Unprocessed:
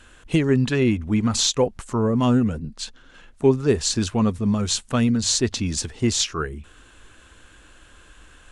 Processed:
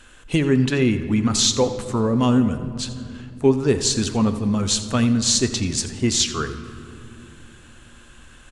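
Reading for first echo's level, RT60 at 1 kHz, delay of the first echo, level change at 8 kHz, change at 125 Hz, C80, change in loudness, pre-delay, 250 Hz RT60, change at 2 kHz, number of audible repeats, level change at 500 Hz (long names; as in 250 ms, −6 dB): −15.5 dB, 2.2 s, 85 ms, +3.0 dB, +0.5 dB, 11.0 dB, +1.5 dB, 3 ms, 4.7 s, +1.5 dB, 1, +0.5 dB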